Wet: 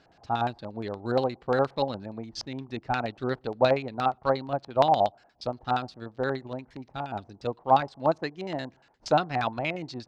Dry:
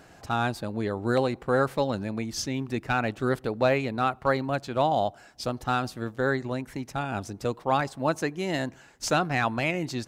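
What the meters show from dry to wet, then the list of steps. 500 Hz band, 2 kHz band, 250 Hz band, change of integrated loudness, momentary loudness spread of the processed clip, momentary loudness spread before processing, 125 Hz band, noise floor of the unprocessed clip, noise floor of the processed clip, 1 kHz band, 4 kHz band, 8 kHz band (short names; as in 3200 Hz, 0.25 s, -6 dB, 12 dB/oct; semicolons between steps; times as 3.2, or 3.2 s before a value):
0.0 dB, -5.5 dB, -4.5 dB, -0.5 dB, 13 LU, 8 LU, -4.5 dB, -53 dBFS, -62 dBFS, +1.5 dB, -2.0 dB, under -10 dB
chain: LFO low-pass square 8.5 Hz 830–4300 Hz; upward expander 1.5:1, over -35 dBFS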